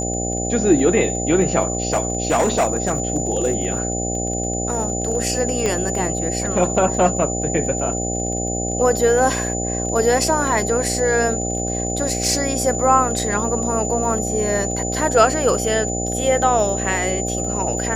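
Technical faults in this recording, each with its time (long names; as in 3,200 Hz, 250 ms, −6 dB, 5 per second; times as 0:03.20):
mains buzz 60 Hz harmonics 13 −25 dBFS
surface crackle 27 per second −29 dBFS
whistle 7,000 Hz −25 dBFS
0:01.65–0:05.15: clipping −12.5 dBFS
0:05.66: click −8 dBFS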